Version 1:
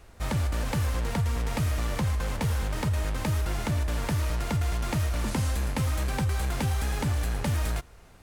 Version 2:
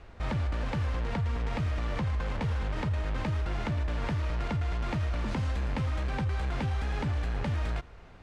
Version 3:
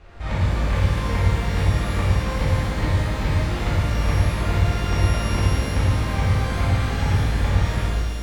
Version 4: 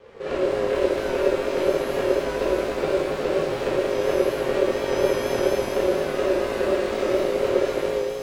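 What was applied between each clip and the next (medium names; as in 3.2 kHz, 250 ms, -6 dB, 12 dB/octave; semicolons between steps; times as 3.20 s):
low-pass 3.5 kHz 12 dB/octave; peak limiter -26 dBFS, peak gain reduction 7 dB; trim +2 dB
on a send: flutter echo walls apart 9.2 m, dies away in 0.55 s; on the sum: pitch-shifted reverb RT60 1.8 s, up +12 st, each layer -8 dB, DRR -7 dB
ring modulator 470 Hz; vibrato 4.2 Hz 38 cents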